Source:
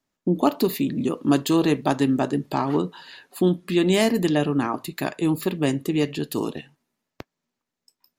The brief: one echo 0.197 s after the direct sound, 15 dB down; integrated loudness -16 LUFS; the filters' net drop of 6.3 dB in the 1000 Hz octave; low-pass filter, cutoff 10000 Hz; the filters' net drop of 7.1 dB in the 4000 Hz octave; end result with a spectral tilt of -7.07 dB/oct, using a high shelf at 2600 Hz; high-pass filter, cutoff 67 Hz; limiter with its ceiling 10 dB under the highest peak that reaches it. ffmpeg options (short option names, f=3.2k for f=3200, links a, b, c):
-af "highpass=67,lowpass=10k,equalizer=f=1k:t=o:g=-8,highshelf=f=2.6k:g=-3.5,equalizer=f=4k:t=o:g=-6,alimiter=limit=-18dB:level=0:latency=1,aecho=1:1:197:0.178,volume=12dB"